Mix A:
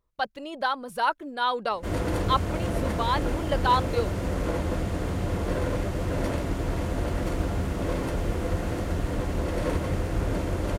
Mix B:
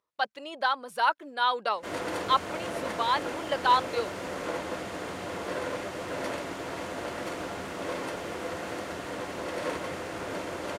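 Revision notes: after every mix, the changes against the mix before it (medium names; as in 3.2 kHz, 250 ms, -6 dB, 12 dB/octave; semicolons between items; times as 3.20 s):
master: add frequency weighting A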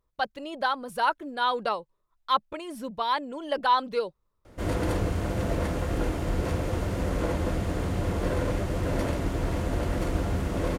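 background: entry +2.75 s; master: remove frequency weighting A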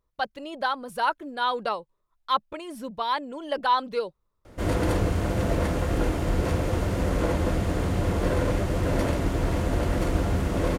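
background +3.0 dB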